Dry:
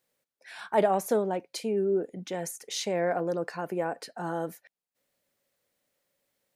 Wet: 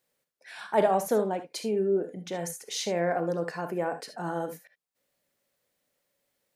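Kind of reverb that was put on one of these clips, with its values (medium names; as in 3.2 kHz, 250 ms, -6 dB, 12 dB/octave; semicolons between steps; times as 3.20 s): gated-style reverb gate 90 ms rising, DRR 8.5 dB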